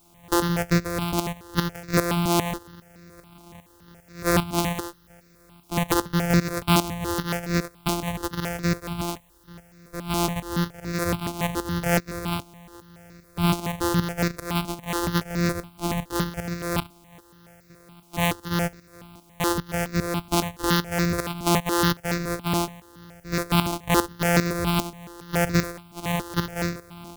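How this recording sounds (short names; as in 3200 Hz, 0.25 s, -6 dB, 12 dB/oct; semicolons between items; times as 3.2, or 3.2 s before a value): a buzz of ramps at a fixed pitch in blocks of 256 samples; tremolo saw up 2.5 Hz, depth 75%; a quantiser's noise floor 12-bit, dither triangular; notches that jump at a steady rate 7.1 Hz 480–3100 Hz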